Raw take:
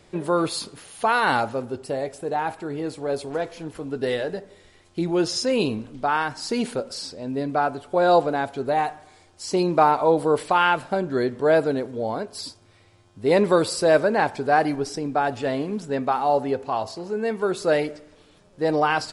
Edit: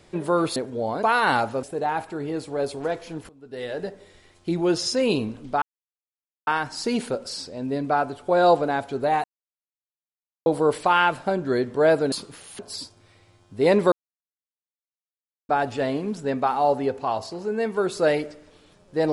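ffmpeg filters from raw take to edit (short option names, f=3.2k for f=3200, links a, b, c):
-filter_complex "[0:a]asplit=12[a][b][c][d][e][f][g][h][i][j][k][l];[a]atrim=end=0.562[m];[b]atrim=start=11.768:end=12.242[n];[c]atrim=start=1.028:end=1.632[o];[d]atrim=start=2.128:end=3.79,asetpts=PTS-STARTPTS,afade=t=out:st=1.658:d=0.004:c=hsin:silence=0.0891251[p];[e]atrim=start=3.79:end=6.12,asetpts=PTS-STARTPTS,afade=t=in:d=0.56:c=qua:silence=0.0891251,afade=t=out:st=2.326:d=0.004:c=hsin,apad=pad_dur=0.85[q];[f]atrim=start=6.12:end=8.89,asetpts=PTS-STARTPTS,afade=t=in:d=0.004:c=hsin,afade=t=out:st=2.766:d=0.004:c=hsin[r];[g]atrim=start=8.89:end=10.11,asetpts=PTS-STARTPTS,volume=0[s];[h]atrim=start=10.11:end=11.772,asetpts=PTS-STARTPTS,afade=t=in:d=0.004:c=hsin[t];[i]atrim=start=0.558:end=1.032[u];[j]atrim=start=12.238:end=13.57,asetpts=PTS-STARTPTS,afade=t=out:st=1.328:d=0.004:c=hsin[v];[k]atrim=start=13.57:end=15.14,asetpts=PTS-STARTPTS,volume=0[w];[l]atrim=start=15.14,asetpts=PTS-STARTPTS,afade=t=in:d=0.004:c=hsin[x];[m][n]acrossfade=d=0.004:c1=hsin:c2=hsin[y];[y][o]acrossfade=d=0.004:c1=hsin:c2=hsin[z];[p][q][r][s][t]concat=n=5:v=0:a=1[aa];[z][aa]acrossfade=d=0.004:c1=hsin:c2=hsin[ab];[ab][u]acrossfade=d=0.004:c1=hsin:c2=hsin[ac];[v][w][x]concat=n=3:v=0:a=1[ad];[ac][ad]acrossfade=d=0.004:c1=hsin:c2=hsin"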